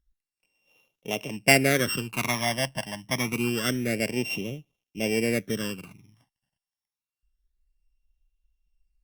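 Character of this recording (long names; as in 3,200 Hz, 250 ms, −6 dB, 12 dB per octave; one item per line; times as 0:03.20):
a buzz of ramps at a fixed pitch in blocks of 16 samples
phaser sweep stages 12, 0.27 Hz, lowest notch 410–1,600 Hz
Opus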